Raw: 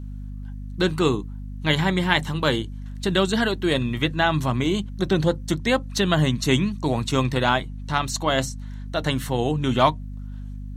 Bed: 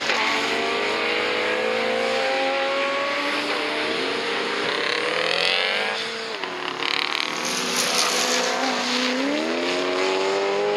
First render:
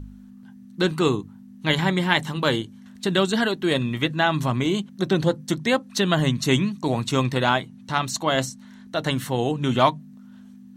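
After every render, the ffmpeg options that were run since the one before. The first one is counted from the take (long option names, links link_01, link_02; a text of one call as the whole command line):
ffmpeg -i in.wav -af "bandreject=frequency=50:width_type=h:width=4,bandreject=frequency=100:width_type=h:width=4,bandreject=frequency=150:width_type=h:width=4" out.wav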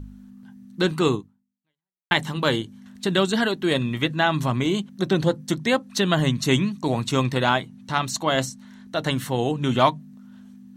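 ffmpeg -i in.wav -filter_complex "[0:a]asplit=2[link_01][link_02];[link_01]atrim=end=2.11,asetpts=PTS-STARTPTS,afade=type=out:start_time=1.15:duration=0.96:curve=exp[link_03];[link_02]atrim=start=2.11,asetpts=PTS-STARTPTS,afade=type=in:duration=0.004:curve=hsin[link_04];[link_03][link_04]concat=n=2:v=0:a=1" out.wav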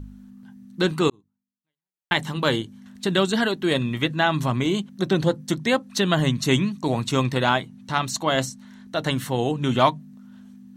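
ffmpeg -i in.wav -filter_complex "[0:a]asplit=2[link_01][link_02];[link_01]atrim=end=1.1,asetpts=PTS-STARTPTS,afade=type=out:start_time=1.096:duration=0.004:curve=hsin[link_03];[link_02]atrim=start=1.1,asetpts=PTS-STARTPTS,afade=type=in:duration=1.23[link_04];[link_03][link_04]concat=n=2:v=0:a=1" out.wav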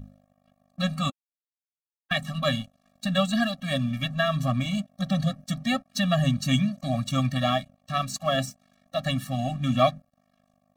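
ffmpeg -i in.wav -af "aeval=exprs='sgn(val(0))*max(abs(val(0))-0.00891,0)':channel_layout=same,afftfilt=real='re*eq(mod(floor(b*sr/1024/270),2),0)':imag='im*eq(mod(floor(b*sr/1024/270),2),0)':win_size=1024:overlap=0.75" out.wav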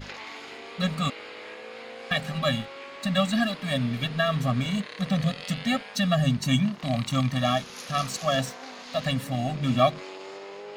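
ffmpeg -i in.wav -i bed.wav -filter_complex "[1:a]volume=-18.5dB[link_01];[0:a][link_01]amix=inputs=2:normalize=0" out.wav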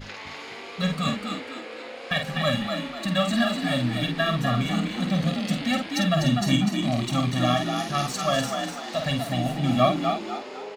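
ffmpeg -i in.wav -filter_complex "[0:a]asplit=2[link_01][link_02];[link_02]adelay=49,volume=-6dB[link_03];[link_01][link_03]amix=inputs=2:normalize=0,asplit=2[link_04][link_05];[link_05]asplit=5[link_06][link_07][link_08][link_09][link_10];[link_06]adelay=248,afreqshift=45,volume=-5.5dB[link_11];[link_07]adelay=496,afreqshift=90,volume=-13.9dB[link_12];[link_08]adelay=744,afreqshift=135,volume=-22.3dB[link_13];[link_09]adelay=992,afreqshift=180,volume=-30.7dB[link_14];[link_10]adelay=1240,afreqshift=225,volume=-39.1dB[link_15];[link_11][link_12][link_13][link_14][link_15]amix=inputs=5:normalize=0[link_16];[link_04][link_16]amix=inputs=2:normalize=0" out.wav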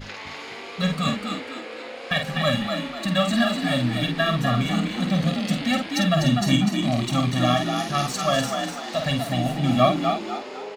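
ffmpeg -i in.wav -af "volume=2dB" out.wav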